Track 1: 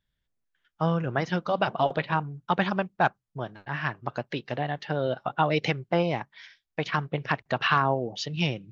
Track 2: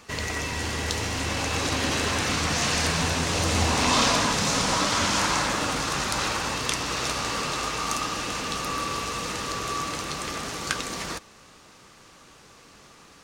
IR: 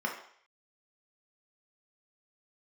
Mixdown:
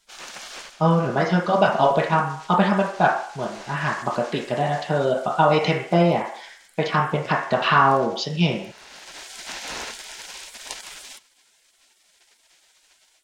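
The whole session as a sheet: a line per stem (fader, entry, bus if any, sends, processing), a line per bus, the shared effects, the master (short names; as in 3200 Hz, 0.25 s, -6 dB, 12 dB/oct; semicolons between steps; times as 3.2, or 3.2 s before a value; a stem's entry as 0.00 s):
+2.5 dB, 0.00 s, send -6 dB, dry
-1.0 dB, 0.00 s, no send, spectral gate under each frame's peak -15 dB weak; high shelf 5700 Hz -7 dB; auto duck -16 dB, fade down 0.25 s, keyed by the first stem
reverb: on, RT60 0.60 s, pre-delay 3 ms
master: AGC gain up to 5 dB; bell 100 Hz -13 dB 1.1 oct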